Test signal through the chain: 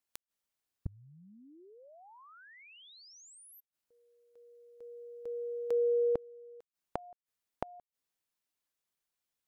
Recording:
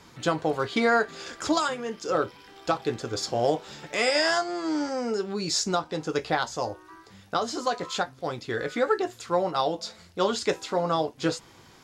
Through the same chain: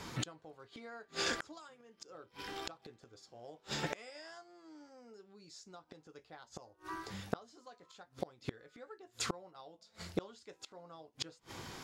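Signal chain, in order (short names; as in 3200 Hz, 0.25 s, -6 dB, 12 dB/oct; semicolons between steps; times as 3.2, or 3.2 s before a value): flipped gate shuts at -27 dBFS, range -33 dB; gain +5 dB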